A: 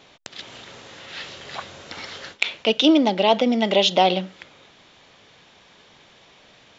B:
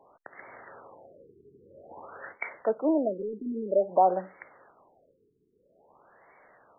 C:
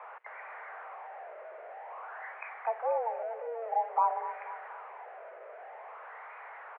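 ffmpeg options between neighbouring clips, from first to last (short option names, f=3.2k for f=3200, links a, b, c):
-filter_complex "[0:a]acontrast=33,acrossover=split=420 2800:gain=0.2 1 0.158[a][b][c];[a][b][c]amix=inputs=3:normalize=0,afftfilt=real='re*lt(b*sr/1024,440*pow(2300/440,0.5+0.5*sin(2*PI*0.51*pts/sr)))':imag='im*lt(b*sr/1024,440*pow(2300/440,0.5+0.5*sin(2*PI*0.51*pts/sr)))':win_size=1024:overlap=0.75,volume=-6.5dB"
-af "aeval=exprs='val(0)+0.5*0.0188*sgn(val(0))':c=same,aecho=1:1:242|484|726|968|1210|1452:0.237|0.128|0.0691|0.0373|0.0202|0.0109,highpass=f=210:t=q:w=0.5412,highpass=f=210:t=q:w=1.307,lowpass=f=2k:t=q:w=0.5176,lowpass=f=2k:t=q:w=0.7071,lowpass=f=2k:t=q:w=1.932,afreqshift=230,volume=-6.5dB"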